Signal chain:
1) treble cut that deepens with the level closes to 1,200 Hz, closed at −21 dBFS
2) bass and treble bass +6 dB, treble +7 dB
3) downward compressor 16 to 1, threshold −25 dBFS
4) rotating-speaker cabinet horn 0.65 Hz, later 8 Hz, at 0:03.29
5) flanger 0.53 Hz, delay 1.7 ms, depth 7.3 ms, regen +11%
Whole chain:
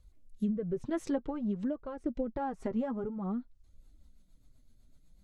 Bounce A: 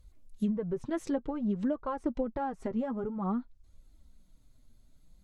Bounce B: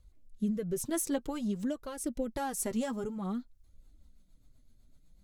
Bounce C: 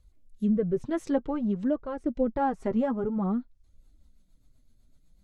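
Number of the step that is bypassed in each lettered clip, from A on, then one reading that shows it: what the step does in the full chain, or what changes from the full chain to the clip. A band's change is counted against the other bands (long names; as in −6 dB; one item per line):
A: 4, 1 kHz band +2.0 dB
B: 1, 2 kHz band +4.5 dB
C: 3, average gain reduction 4.5 dB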